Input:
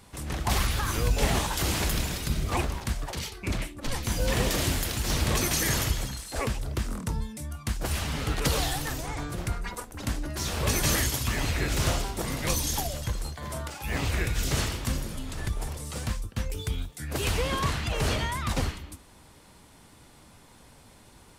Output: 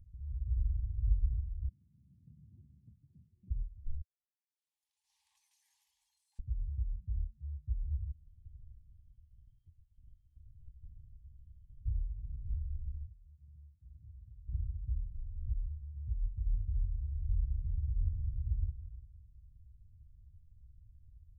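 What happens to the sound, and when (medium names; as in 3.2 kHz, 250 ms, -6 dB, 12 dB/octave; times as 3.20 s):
1.68–3.50 s: high-pass 200 Hz 24 dB/octave
4.01–6.39 s: brick-wall FIR band-pass 770–12000 Hz
8.11–11.85 s: frequency inversion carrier 3.2 kHz
13.06–14.48 s: high-pass 630 Hz 6 dB/octave
16.19–18.35 s: reverb throw, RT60 2.2 s, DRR -0.5 dB
whole clip: inverse Chebyshev low-pass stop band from 520 Hz, stop band 80 dB; upward compressor, threshold -44 dBFS; trim -3.5 dB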